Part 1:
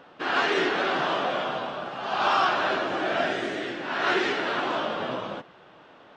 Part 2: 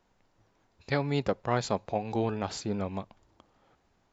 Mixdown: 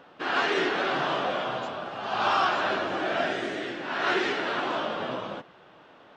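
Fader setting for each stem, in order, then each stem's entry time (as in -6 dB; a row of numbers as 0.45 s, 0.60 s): -1.5 dB, -16.5 dB; 0.00 s, 0.00 s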